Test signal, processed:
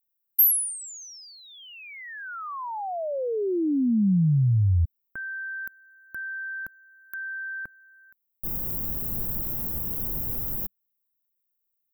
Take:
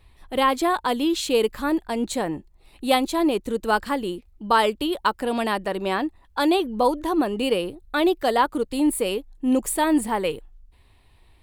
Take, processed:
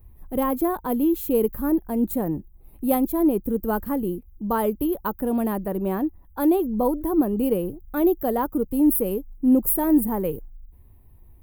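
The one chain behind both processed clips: EQ curve 190 Hz 0 dB, 1400 Hz -16 dB, 4000 Hz -29 dB, 8200 Hz -18 dB, 15000 Hz +14 dB; gain +6 dB

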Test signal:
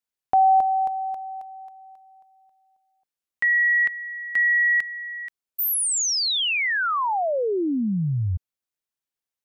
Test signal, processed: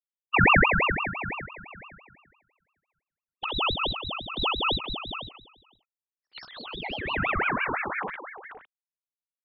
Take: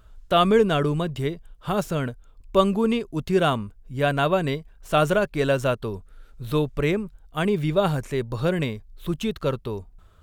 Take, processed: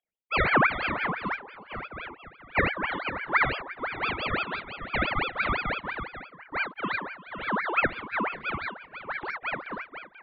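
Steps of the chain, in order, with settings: sine-wave speech; low-pass opened by the level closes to 470 Hz, open at -18 dBFS; on a send: tapped delay 52/67/352/485/521/561 ms -4/-6.5/-18/-9.5/-15.5/-18.5 dB; on the sum: ring modulator with a swept carrier 1300 Hz, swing 55%, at 5.9 Hz; gain -5.5 dB

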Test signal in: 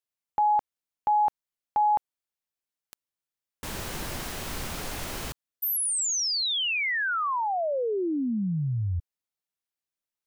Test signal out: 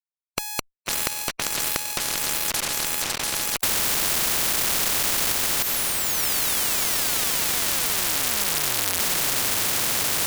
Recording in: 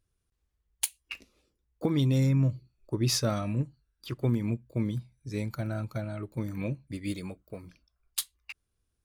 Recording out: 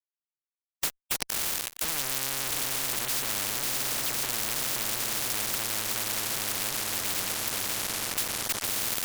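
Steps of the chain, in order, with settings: diffused feedback echo 0.625 s, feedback 73%, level -13 dB; fuzz box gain 49 dB, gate -46 dBFS; spectral compressor 10:1; gain +3 dB

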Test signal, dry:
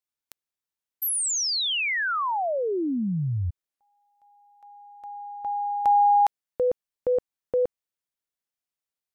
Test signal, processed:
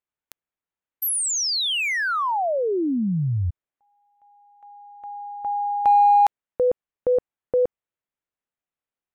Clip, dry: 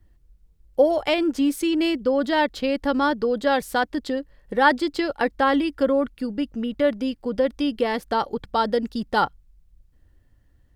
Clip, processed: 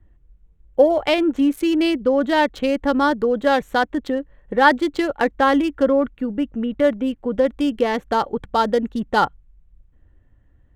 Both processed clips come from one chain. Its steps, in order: Wiener smoothing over 9 samples; gain +3.5 dB

